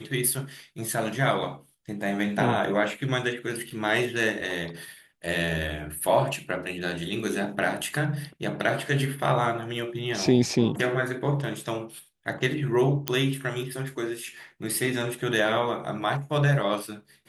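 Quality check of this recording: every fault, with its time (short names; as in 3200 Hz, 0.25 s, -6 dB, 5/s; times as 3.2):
3.7–3.71 gap 5.9 ms
13.08 pop -7 dBFS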